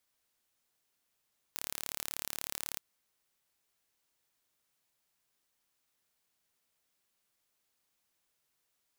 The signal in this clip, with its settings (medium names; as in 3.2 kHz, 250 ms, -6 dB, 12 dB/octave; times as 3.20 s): pulse train 36.3 per s, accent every 0, -10 dBFS 1.22 s